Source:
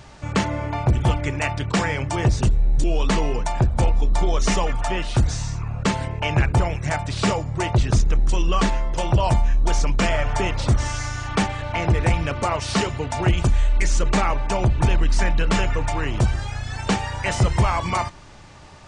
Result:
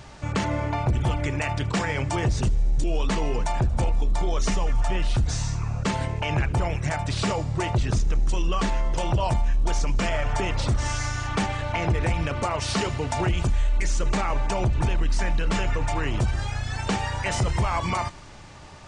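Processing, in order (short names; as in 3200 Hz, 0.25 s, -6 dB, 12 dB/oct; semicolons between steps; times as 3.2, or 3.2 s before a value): 4.49–5.25 low shelf 150 Hz +8.5 dB; limiter -16 dBFS, peak gain reduction 13 dB; thin delay 77 ms, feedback 82%, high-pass 3300 Hz, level -20.5 dB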